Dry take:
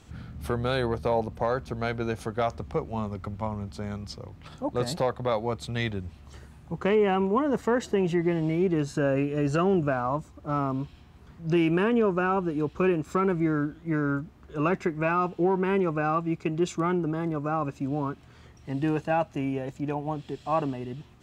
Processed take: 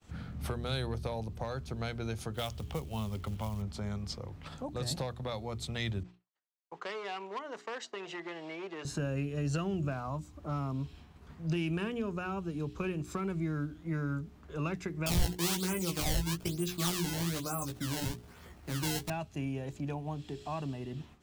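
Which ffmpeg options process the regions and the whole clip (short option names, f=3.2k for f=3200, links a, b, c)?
-filter_complex "[0:a]asettb=1/sr,asplit=3[a][b][c];[a]atrim=end=2.344[d];[b]atrim=start=2.34:end=3.62,asetpts=PTS-STARTPTS,afade=t=in:d=0.004:c=qsin,afade=t=out:st=1.276:d=0.004:c=qsin,equalizer=f=3.1k:w=3:g=11.5,acrusher=bits=6:mode=log:mix=0:aa=0.000001[e];[c]atrim=start=3.616[f];[d][e]acrossfade=d=0.004:c1=hsin:c2=qsin[g];[g][f]acrossfade=d=0.004:c1=qsin:c2=hsin,asettb=1/sr,asplit=3[h][i][j];[h]atrim=end=6.034[k];[i]atrim=start=6.03:end=8.85,asetpts=PTS-STARTPTS,afade=t=in:d=0.004:c=qsin,afade=t=out:st=2.816:d=0.004:c=qsin,agate=range=-33dB:threshold=-37dB:ratio=3:release=100:detection=peak,asoftclip=type=hard:threshold=-19dB,highpass=690,lowpass=5.3k[l];[j]atrim=start=8.846[m];[k][l]acrossfade=d=0.004:c1=hsin:c2=qsin[n];[n][m]acrossfade=d=0.004:c1=qsin:c2=hsin,asettb=1/sr,asplit=3[o][p][q];[o]atrim=end=15.064[r];[p]atrim=start=15.06:end=19.1,asetpts=PTS-STARTPTS,afade=t=in:d=0.004:c=qsin,afade=t=out:st=4.036:d=0.004:c=qsin,acrusher=samples=21:mix=1:aa=0.000001:lfo=1:lforange=33.6:lforate=1.1,asplit=2[s][t];[t]adelay=17,volume=-3dB[u];[s][u]amix=inputs=2:normalize=0,atrim=end_sample=178164[v];[q]atrim=start=19.096[w];[r][v]acrossfade=d=0.004:c1=hsin:c2=qsin[x];[x][w]acrossfade=d=0.004:c1=qsin:c2=hsin,bandreject=f=60:t=h:w=6,bandreject=f=120:t=h:w=6,bandreject=f=180:t=h:w=6,bandreject=f=240:t=h:w=6,bandreject=f=300:t=h:w=6,bandreject=f=360:t=h:w=6,bandreject=f=420:t=h:w=6,agate=range=-33dB:threshold=-49dB:ratio=3:detection=peak,acrossover=split=160|3000[y][z][aa];[z]acompressor=threshold=-41dB:ratio=3[ab];[y][ab][aa]amix=inputs=3:normalize=0"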